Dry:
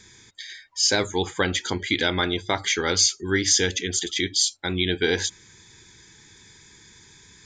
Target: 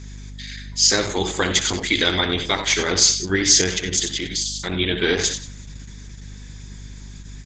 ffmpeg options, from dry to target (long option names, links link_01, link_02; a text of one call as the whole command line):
ffmpeg -i in.wav -filter_complex "[0:a]asettb=1/sr,asplit=3[link_01][link_02][link_03];[link_01]atrim=end=1.114[link_04];[link_02]atrim=start=1.11:end=2.59,asetpts=PTS-STARTPTS,afade=type=in:duration=0.004:curve=qsin,afade=type=out:start_time=1.476:duration=0.004:curve=qsin,highshelf=frequency=4300:gain=9[link_05];[link_03]atrim=start=2.586[link_06];[link_04][link_05]acrossfade=duration=0.004:curve1=hsin:curve2=qsin[link_07];[link_07][link_06]acrossfade=duration=0.004:curve1=qsin:curve2=hsin,asplit=2[link_08][link_09];[link_09]aecho=0:1:64|91|180:0.282|0.299|0.126[link_10];[link_08][link_10]amix=inputs=2:normalize=0,asplit=3[link_11][link_12][link_13];[link_11]afade=type=out:start_time=4.07:duration=0.02[link_14];[link_12]acompressor=threshold=-26dB:ratio=5,afade=type=in:start_time=4.07:duration=0.02,afade=type=out:start_time=4.54:duration=0.02[link_15];[link_13]afade=type=in:start_time=4.54:duration=0.02[link_16];[link_14][link_15][link_16]amix=inputs=3:normalize=0,aeval=exprs='val(0)+0.0141*(sin(2*PI*50*n/s)+sin(2*PI*2*50*n/s)/2+sin(2*PI*3*50*n/s)/3+sin(2*PI*4*50*n/s)/4+sin(2*PI*5*50*n/s)/5)':channel_layout=same,volume=2.5dB" -ar 48000 -c:a libopus -b:a 10k out.opus